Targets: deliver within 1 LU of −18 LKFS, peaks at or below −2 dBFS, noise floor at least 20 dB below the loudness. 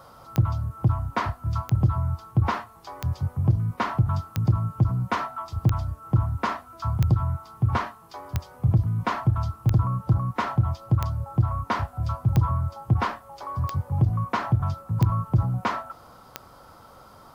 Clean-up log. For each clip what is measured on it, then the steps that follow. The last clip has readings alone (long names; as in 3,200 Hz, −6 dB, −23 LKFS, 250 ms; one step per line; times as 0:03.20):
number of clicks 13; integrated loudness −26.0 LKFS; sample peak −5.5 dBFS; target loudness −18.0 LKFS
→ click removal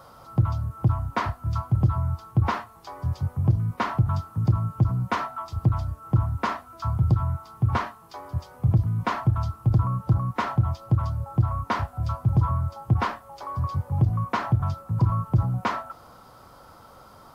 number of clicks 0; integrated loudness −26.0 LKFS; sample peak −11.0 dBFS; target loudness −18.0 LKFS
→ level +8 dB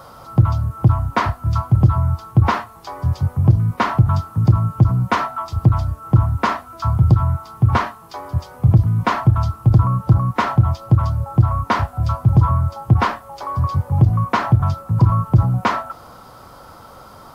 integrated loudness −18.0 LKFS; sample peak −3.0 dBFS; background noise floor −42 dBFS